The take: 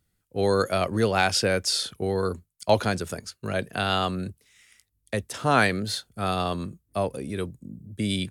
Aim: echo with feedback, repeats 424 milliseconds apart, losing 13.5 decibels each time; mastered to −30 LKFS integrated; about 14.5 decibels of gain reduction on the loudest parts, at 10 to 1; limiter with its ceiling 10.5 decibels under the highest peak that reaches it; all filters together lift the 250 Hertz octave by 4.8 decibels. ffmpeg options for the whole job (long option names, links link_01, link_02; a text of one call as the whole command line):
ffmpeg -i in.wav -af "equalizer=frequency=250:width_type=o:gain=6.5,acompressor=threshold=-28dB:ratio=10,alimiter=level_in=1dB:limit=-24dB:level=0:latency=1,volume=-1dB,aecho=1:1:424|848:0.211|0.0444,volume=6dB" out.wav